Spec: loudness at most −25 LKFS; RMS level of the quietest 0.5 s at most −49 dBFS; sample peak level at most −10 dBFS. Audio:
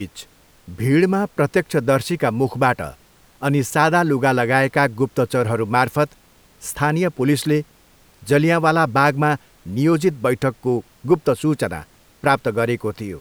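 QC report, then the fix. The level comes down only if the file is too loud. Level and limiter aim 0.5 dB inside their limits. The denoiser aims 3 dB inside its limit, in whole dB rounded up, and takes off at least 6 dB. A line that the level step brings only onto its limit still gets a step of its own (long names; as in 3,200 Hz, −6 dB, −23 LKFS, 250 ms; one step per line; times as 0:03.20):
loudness −19.0 LKFS: out of spec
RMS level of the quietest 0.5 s −53 dBFS: in spec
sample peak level −2.5 dBFS: out of spec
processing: level −6.5 dB
brickwall limiter −10.5 dBFS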